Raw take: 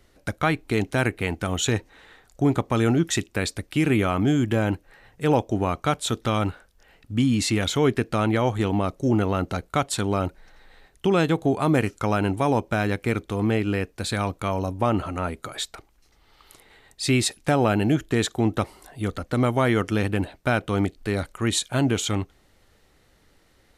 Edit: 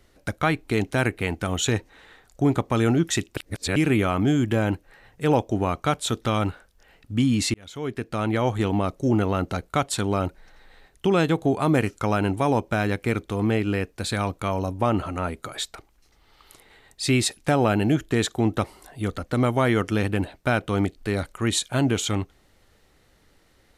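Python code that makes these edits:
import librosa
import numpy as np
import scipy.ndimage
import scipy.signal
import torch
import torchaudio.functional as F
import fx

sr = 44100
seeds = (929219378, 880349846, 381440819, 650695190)

y = fx.edit(x, sr, fx.reverse_span(start_s=3.37, length_s=0.39),
    fx.fade_in_span(start_s=7.54, length_s=0.97), tone=tone)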